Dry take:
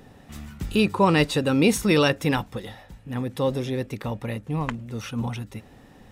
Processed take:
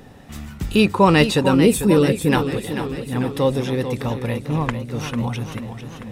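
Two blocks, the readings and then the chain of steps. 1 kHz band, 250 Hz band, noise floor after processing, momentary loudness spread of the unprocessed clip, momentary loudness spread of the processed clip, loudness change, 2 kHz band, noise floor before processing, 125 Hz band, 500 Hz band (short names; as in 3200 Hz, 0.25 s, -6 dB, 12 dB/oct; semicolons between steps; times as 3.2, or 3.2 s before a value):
+5.0 dB, +5.5 dB, -39 dBFS, 19 LU, 17 LU, +4.5 dB, +3.0 dB, -51 dBFS, +5.5 dB, +5.5 dB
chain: spectral gain 1.53–2.29, 550–7000 Hz -12 dB; warbling echo 0.444 s, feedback 61%, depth 100 cents, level -9.5 dB; gain +5 dB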